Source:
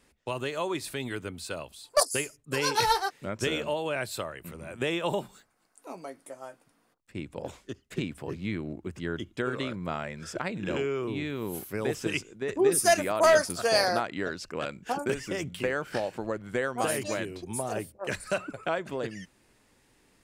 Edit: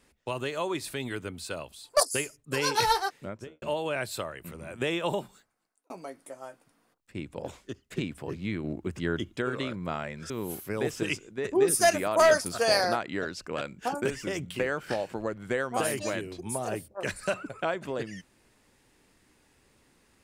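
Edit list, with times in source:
0:03.10–0:03.62: fade out and dull
0:05.09–0:05.90: fade out
0:08.64–0:09.38: clip gain +3.5 dB
0:10.30–0:11.34: remove

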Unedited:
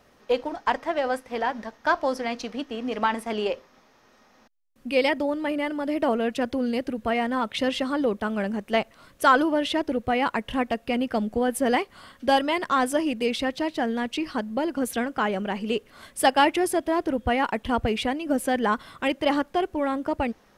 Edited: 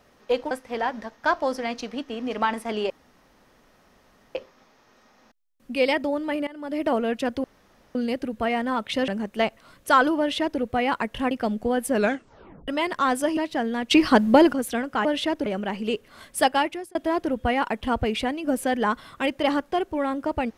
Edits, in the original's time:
0:00.51–0:01.12: remove
0:03.51: splice in room tone 1.45 s
0:05.63–0:05.97: fade in, from −20.5 dB
0:06.60: splice in room tone 0.51 s
0:07.73–0:08.42: remove
0:09.53–0:09.94: duplicate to 0:15.28
0:10.65–0:11.02: remove
0:11.62: tape stop 0.77 s
0:13.08–0:13.60: remove
0:14.14–0:14.76: clip gain +11.5 dB
0:16.24–0:16.77: fade out

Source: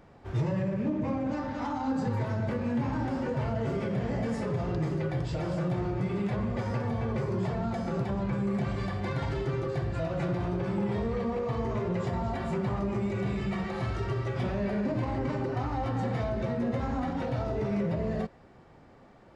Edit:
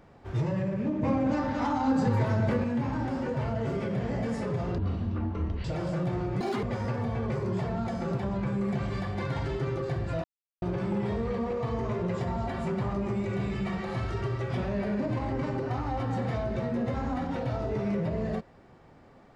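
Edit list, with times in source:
0:01.03–0:02.64: clip gain +4.5 dB
0:04.78–0:05.29: play speed 59%
0:06.05–0:06.49: play speed 195%
0:10.10–0:10.48: silence

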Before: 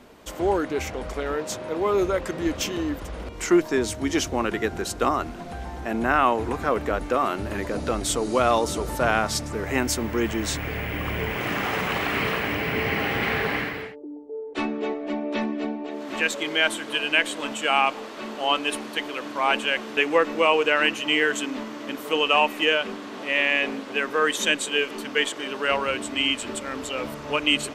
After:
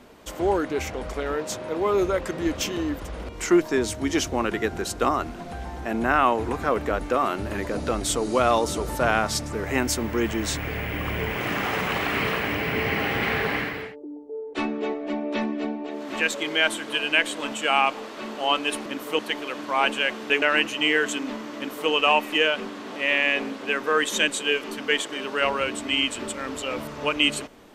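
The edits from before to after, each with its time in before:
0:20.09–0:20.69: remove
0:21.84–0:22.17: duplicate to 0:18.86

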